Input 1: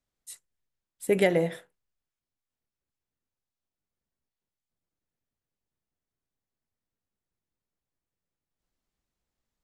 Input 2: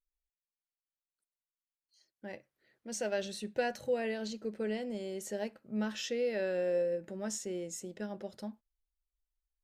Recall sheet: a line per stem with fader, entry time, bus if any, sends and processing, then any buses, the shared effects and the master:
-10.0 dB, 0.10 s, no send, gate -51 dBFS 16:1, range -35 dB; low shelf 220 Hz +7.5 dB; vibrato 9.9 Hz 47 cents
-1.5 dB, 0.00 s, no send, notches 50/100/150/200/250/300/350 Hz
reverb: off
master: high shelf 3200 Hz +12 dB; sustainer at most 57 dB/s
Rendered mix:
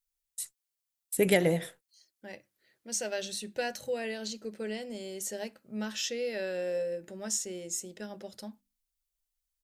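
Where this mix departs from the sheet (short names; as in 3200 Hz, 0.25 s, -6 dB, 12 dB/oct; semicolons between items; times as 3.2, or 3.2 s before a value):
stem 1 -10.0 dB -> -4.0 dB; master: missing sustainer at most 57 dB/s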